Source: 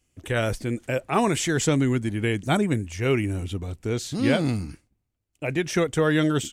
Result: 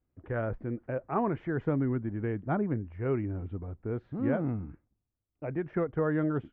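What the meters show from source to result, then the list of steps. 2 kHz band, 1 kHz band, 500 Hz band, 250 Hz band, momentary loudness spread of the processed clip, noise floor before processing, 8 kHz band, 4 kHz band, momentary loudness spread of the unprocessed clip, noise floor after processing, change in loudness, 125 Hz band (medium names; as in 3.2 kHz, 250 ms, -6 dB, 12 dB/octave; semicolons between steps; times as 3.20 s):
-13.5 dB, -7.5 dB, -7.0 dB, -7.0 dB, 8 LU, -77 dBFS, under -40 dB, under -30 dB, 8 LU, -84 dBFS, -7.5 dB, -7.0 dB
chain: low-pass 1.5 kHz 24 dB/octave; trim -7 dB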